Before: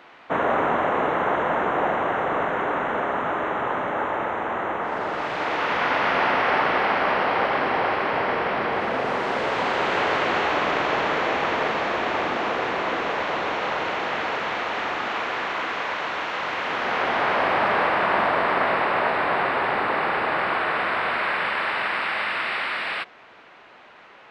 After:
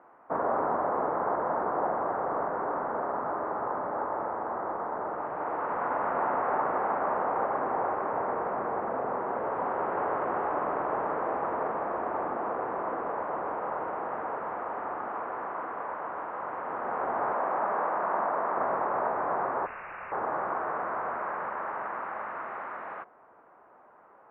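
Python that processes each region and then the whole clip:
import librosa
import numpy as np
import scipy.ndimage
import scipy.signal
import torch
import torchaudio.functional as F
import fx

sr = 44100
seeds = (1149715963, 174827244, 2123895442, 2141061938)

y = fx.chain(x, sr, fx.highpass(hz=130.0, slope=24),
    fx.low_shelf(hz=420.0, db=-4.5), at=(17.33, 18.58))
y = fx.chain(y, sr, fx.delta_mod(bps=64000, step_db=-33.0),
    fx.highpass(hz=730.0, slope=24),
    fx.freq_invert(carrier_hz=3500), at=(19.66, 20.12))
y = scipy.signal.sosfilt(scipy.signal.butter(4, 1200.0, 'lowpass', fs=sr, output='sos'), y)
y = fx.low_shelf(y, sr, hz=350.0, db=-7.5)
y = y * 10.0 ** (-3.5 / 20.0)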